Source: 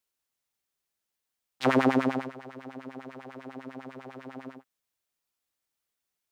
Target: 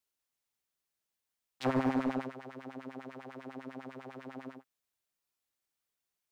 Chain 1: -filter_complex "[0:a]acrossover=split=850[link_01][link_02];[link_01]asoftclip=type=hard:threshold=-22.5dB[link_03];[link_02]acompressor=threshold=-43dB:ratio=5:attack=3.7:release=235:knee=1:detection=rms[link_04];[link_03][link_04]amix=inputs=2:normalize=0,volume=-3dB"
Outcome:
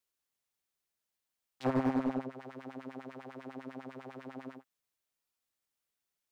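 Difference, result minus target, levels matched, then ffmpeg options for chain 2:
downward compressor: peak gain reduction +8 dB
-filter_complex "[0:a]acrossover=split=850[link_01][link_02];[link_01]asoftclip=type=hard:threshold=-22.5dB[link_03];[link_02]acompressor=threshold=-33dB:ratio=5:attack=3.7:release=235:knee=1:detection=rms[link_04];[link_03][link_04]amix=inputs=2:normalize=0,volume=-3dB"

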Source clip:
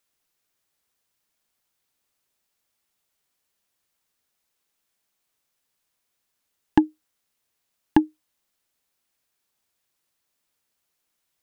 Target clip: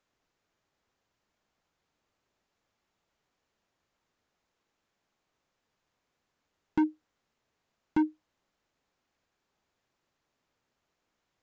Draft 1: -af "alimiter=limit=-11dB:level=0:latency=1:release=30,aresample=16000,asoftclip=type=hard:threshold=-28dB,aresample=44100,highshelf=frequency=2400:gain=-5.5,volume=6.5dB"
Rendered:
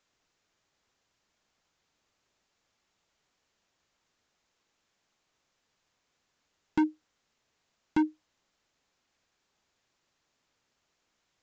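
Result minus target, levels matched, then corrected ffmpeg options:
4,000 Hz band +5.5 dB
-af "alimiter=limit=-11dB:level=0:latency=1:release=30,aresample=16000,asoftclip=type=hard:threshold=-28dB,aresample=44100,highshelf=frequency=2400:gain=-14,volume=6.5dB"

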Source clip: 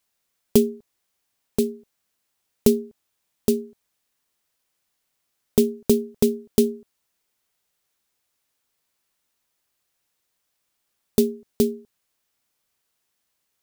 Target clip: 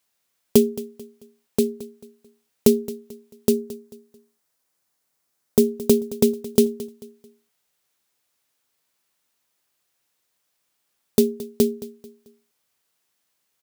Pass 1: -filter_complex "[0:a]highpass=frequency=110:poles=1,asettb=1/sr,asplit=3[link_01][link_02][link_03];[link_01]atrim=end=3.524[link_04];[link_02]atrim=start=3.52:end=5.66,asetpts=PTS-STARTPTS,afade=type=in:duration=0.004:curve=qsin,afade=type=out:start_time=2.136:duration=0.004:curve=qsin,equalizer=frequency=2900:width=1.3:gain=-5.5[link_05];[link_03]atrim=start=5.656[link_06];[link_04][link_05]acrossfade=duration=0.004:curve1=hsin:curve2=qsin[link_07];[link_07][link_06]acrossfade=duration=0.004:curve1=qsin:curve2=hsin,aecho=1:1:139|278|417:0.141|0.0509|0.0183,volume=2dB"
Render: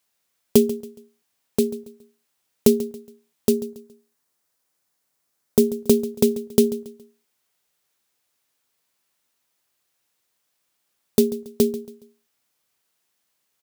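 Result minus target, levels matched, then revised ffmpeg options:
echo 81 ms early
-filter_complex "[0:a]highpass=frequency=110:poles=1,asettb=1/sr,asplit=3[link_01][link_02][link_03];[link_01]atrim=end=3.524[link_04];[link_02]atrim=start=3.52:end=5.66,asetpts=PTS-STARTPTS,afade=type=in:duration=0.004:curve=qsin,afade=type=out:start_time=2.136:duration=0.004:curve=qsin,equalizer=frequency=2900:width=1.3:gain=-5.5[link_05];[link_03]atrim=start=5.656[link_06];[link_04][link_05]acrossfade=duration=0.004:curve1=hsin:curve2=qsin[link_07];[link_07][link_06]acrossfade=duration=0.004:curve1=qsin:curve2=hsin,aecho=1:1:220|440|660:0.141|0.0509|0.0183,volume=2dB"

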